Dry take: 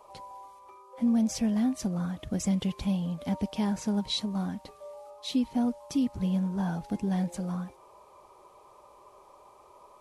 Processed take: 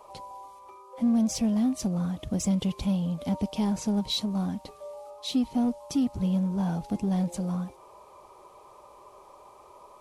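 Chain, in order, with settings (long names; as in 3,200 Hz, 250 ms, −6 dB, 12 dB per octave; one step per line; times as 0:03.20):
in parallel at −6 dB: hard clipping −31.5 dBFS, distortion −7 dB
on the sum: dynamic equaliser 1,700 Hz, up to −7 dB, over −56 dBFS, Q 1.8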